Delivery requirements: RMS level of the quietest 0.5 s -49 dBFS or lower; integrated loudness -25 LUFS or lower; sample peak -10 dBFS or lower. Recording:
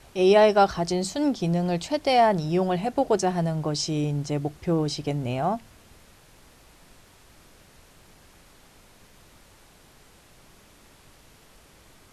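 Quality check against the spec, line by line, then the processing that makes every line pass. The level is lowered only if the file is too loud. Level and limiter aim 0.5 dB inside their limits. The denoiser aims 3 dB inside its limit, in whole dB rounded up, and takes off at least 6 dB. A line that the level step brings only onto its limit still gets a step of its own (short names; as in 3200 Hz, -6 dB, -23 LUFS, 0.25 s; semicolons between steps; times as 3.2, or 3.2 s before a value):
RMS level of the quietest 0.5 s -54 dBFS: OK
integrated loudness -24.0 LUFS: fail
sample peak -7.0 dBFS: fail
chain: gain -1.5 dB; limiter -10.5 dBFS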